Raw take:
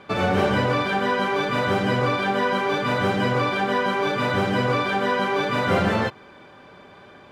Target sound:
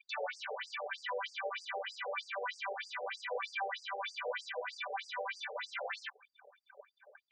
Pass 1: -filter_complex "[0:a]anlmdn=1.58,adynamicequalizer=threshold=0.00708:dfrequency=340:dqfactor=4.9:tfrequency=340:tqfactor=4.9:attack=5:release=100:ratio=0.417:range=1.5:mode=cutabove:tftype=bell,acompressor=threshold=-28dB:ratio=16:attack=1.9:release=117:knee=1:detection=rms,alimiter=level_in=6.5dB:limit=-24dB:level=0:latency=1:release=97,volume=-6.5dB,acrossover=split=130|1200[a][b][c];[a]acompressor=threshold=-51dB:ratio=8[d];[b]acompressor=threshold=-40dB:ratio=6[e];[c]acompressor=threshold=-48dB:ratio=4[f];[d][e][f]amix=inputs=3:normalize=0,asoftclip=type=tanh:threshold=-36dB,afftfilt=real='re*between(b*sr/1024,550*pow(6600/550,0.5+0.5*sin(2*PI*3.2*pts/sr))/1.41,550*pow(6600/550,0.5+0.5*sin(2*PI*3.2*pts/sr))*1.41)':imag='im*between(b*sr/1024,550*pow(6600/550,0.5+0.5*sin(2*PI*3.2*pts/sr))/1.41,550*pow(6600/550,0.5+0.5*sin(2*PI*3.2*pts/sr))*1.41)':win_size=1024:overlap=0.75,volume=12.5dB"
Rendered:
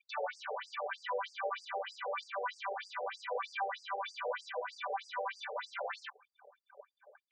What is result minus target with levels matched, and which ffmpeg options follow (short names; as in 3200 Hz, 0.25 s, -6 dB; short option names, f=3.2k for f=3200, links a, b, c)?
4000 Hz band -3.5 dB
-filter_complex "[0:a]anlmdn=1.58,adynamicequalizer=threshold=0.00708:dfrequency=340:dqfactor=4.9:tfrequency=340:tqfactor=4.9:attack=5:release=100:ratio=0.417:range=1.5:mode=cutabove:tftype=bell,acompressor=threshold=-28dB:ratio=16:attack=1.9:release=117:knee=1:detection=rms,highshelf=f=1.5k:t=q:w=1.5:g=7.5,alimiter=level_in=6.5dB:limit=-24dB:level=0:latency=1:release=97,volume=-6.5dB,acrossover=split=130|1200[a][b][c];[a]acompressor=threshold=-51dB:ratio=8[d];[b]acompressor=threshold=-40dB:ratio=6[e];[c]acompressor=threshold=-48dB:ratio=4[f];[d][e][f]amix=inputs=3:normalize=0,asoftclip=type=tanh:threshold=-36dB,afftfilt=real='re*between(b*sr/1024,550*pow(6600/550,0.5+0.5*sin(2*PI*3.2*pts/sr))/1.41,550*pow(6600/550,0.5+0.5*sin(2*PI*3.2*pts/sr))*1.41)':imag='im*between(b*sr/1024,550*pow(6600/550,0.5+0.5*sin(2*PI*3.2*pts/sr))/1.41,550*pow(6600/550,0.5+0.5*sin(2*PI*3.2*pts/sr))*1.41)':win_size=1024:overlap=0.75,volume=12.5dB"